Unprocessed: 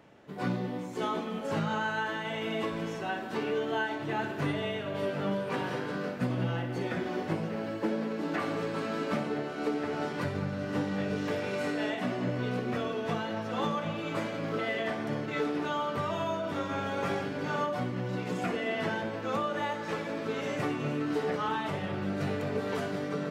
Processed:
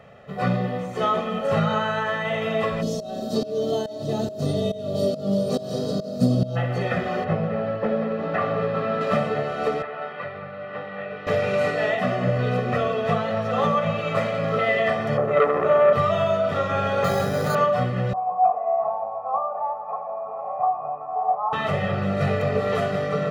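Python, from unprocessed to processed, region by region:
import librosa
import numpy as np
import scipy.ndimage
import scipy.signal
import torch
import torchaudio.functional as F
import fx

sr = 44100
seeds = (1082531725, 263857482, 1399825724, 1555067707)

y = fx.curve_eq(x, sr, hz=(160.0, 250.0, 2200.0, 4200.0), db=(0, 10, -23, 11), at=(2.81, 6.55), fade=0.02)
y = fx.volume_shaper(y, sr, bpm=140, per_beat=1, depth_db=-21, release_ms=332.0, shape='fast start', at=(2.81, 6.55), fade=0.02)
y = fx.dmg_tone(y, sr, hz=630.0, level_db=-46.0, at=(2.81, 6.55), fade=0.02)
y = fx.chain(y, sr, fx.lowpass(hz=4700.0, slope=12),
    fx.high_shelf(hz=2500.0, db=-8.0), at=(7.24, 9.01))
y = fx.chain(y, sr, fx.highpass(hz=1200.0, slope=6),
    fx.air_absorb(metres=420.0), at=(9.82, 11.27))
y = fx.chain(y, sr, fx.peak_eq(hz=4200.0, db=-14.0, octaves=1.7),
    fx.small_body(hz=(390.0, 550.0), ring_ms=30, db=12),
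    fx.transformer_sat(knee_hz=1000.0), at=(15.17, 15.93))
y = fx.chain(y, sr, fx.air_absorb(metres=220.0),
    fx.resample_bad(factor=8, down='filtered', up='hold'),
    fx.env_flatten(amount_pct=70), at=(17.04, 17.55))
y = fx.chain(y, sr, fx.formant_cascade(vowel='a'),
    fx.peak_eq(hz=860.0, db=14.0, octaves=0.94), at=(18.13, 21.53))
y = fx.bass_treble(y, sr, bass_db=0, treble_db=-8)
y = y + 0.9 * np.pad(y, (int(1.6 * sr / 1000.0), 0))[:len(y)]
y = y * librosa.db_to_amplitude(7.5)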